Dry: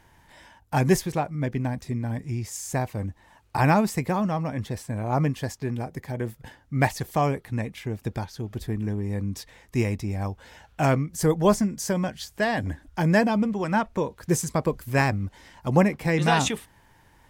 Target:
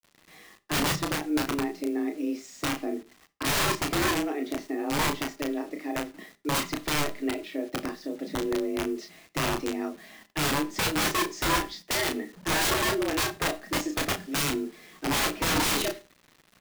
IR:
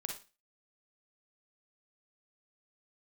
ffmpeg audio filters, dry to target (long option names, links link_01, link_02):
-filter_complex "[0:a]equalizer=frequency=200:width_type=o:width=0.33:gain=8,equalizer=frequency=500:width_type=o:width=0.33:gain=6,equalizer=frequency=800:width_type=o:width=0.33:gain=-11,equalizer=frequency=1600:width_type=o:width=0.33:gain=6,aeval=exprs='0.266*(abs(mod(val(0)/0.266+3,4)-2)-1)':channel_layout=same,lowpass=frequency=4500:width=0.5412,lowpass=frequency=4500:width=1.3066,aemphasis=mode=production:type=cd,aecho=1:1:6.6:0.36,afreqshift=140,asetrate=45938,aresample=44100,aeval=exprs='(mod(7.08*val(0)+1,2)-1)/7.08':channel_layout=same,aecho=1:1:23|33:0.188|0.531,acrusher=bits=7:mix=0:aa=0.000001,asplit=2[link_01][link_02];[1:a]atrim=start_sample=2205,lowshelf=frequency=310:gain=11[link_03];[link_02][link_03]afir=irnorm=-1:irlink=0,volume=-11.5dB[link_04];[link_01][link_04]amix=inputs=2:normalize=0,volume=-6.5dB"